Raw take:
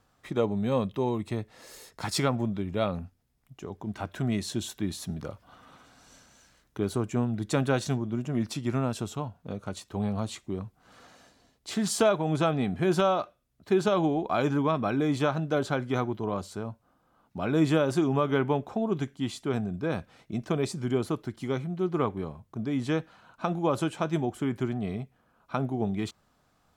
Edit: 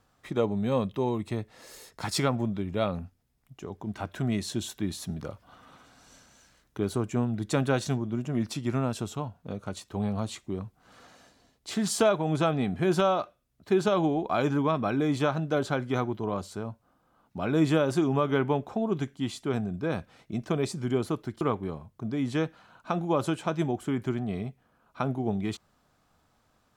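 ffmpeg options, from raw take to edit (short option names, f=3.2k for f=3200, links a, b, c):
-filter_complex "[0:a]asplit=2[a][b];[a]atrim=end=21.412[c];[b]atrim=start=21.948[d];[c][d]acrossfade=d=0.004:c1=hsin:c2=hsin"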